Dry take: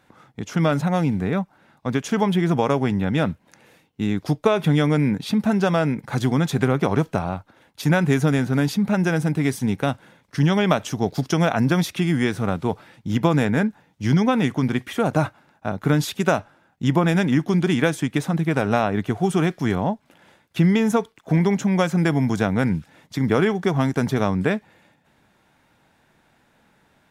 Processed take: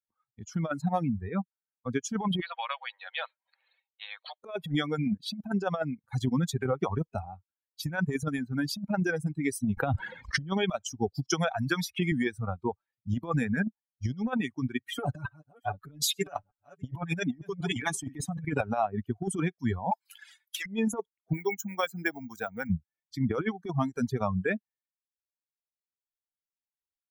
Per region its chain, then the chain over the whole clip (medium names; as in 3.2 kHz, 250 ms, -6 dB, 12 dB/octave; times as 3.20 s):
2.41–4.44 s: brick-wall FIR band-pass 490–4500 Hz + spectrum-flattening compressor 2:1
9.77–10.51 s: treble shelf 4.5 kHz -11 dB + level flattener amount 70%
11.31–12.12 s: peaking EQ 240 Hz -7 dB 1.6 oct + three bands compressed up and down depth 100%
14.88–18.61 s: chunks repeated in reverse 407 ms, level -13 dB + comb 7 ms, depth 96%
19.91–20.66 s: high-pass 980 Hz + overdrive pedal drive 26 dB, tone 6.2 kHz, clips at -10 dBFS + treble shelf 6.5 kHz +10.5 dB
21.33–22.70 s: bass shelf 260 Hz -11.5 dB + careless resampling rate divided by 2×, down none, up hold
whole clip: expander on every frequency bin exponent 2; reverb removal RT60 1.9 s; compressor with a negative ratio -28 dBFS, ratio -0.5